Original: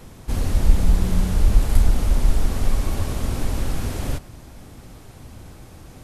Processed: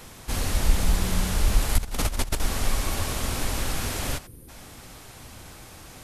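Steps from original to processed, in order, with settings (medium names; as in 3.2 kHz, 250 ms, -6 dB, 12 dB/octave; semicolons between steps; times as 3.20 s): tilt shelf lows -6 dB, about 670 Hz; 1.78–2.40 s: compressor with a negative ratio -25 dBFS, ratio -0.5; 4.27–4.49 s: time-frequency box 550–8700 Hz -18 dB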